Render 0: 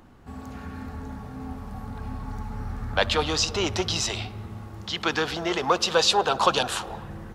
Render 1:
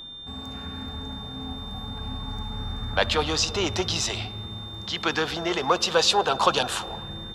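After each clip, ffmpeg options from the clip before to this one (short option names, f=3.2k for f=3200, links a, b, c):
-af "aeval=exprs='val(0)+0.0126*sin(2*PI*3600*n/s)':c=same"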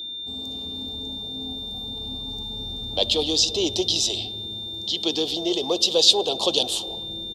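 -af "firequalizer=gain_entry='entry(170,0);entry(310,11);entry(670,4);entry(1500,-22);entry(3300,14);entry(6100,10)':delay=0.05:min_phase=1,volume=-6.5dB"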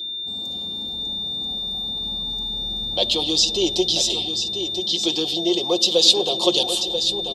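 -filter_complex "[0:a]aecho=1:1:5.6:0.65,asplit=2[a][b];[b]aecho=0:1:987:0.376[c];[a][c]amix=inputs=2:normalize=0"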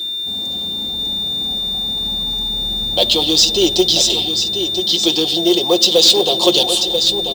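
-af "acrusher=bits=5:mode=log:mix=0:aa=0.000001,apsyclip=10dB,volume=-3.5dB"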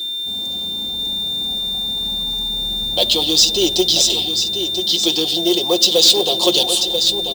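-af "highshelf=f=5.8k:g=6.5,volume=-3dB"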